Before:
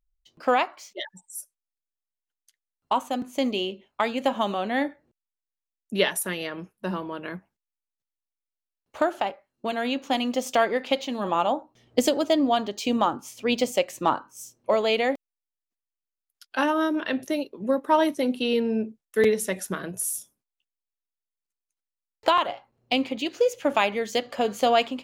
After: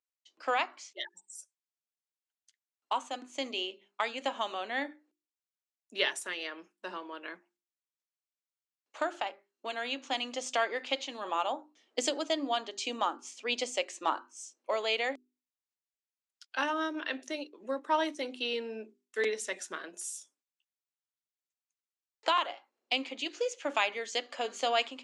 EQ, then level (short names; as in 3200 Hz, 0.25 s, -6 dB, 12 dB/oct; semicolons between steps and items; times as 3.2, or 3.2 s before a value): elliptic band-pass 280–7800 Hz, stop band 40 dB; tilt shelf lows -5 dB; notches 50/100/150/200/250/300/350/400 Hz; -7.0 dB